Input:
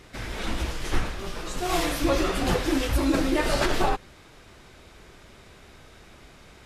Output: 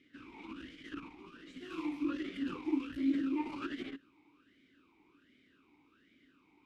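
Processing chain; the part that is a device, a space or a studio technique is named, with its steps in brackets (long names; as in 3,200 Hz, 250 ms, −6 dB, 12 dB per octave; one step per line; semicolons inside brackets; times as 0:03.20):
talk box (tube saturation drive 17 dB, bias 0.65; formant filter swept between two vowels i-u 1.3 Hz)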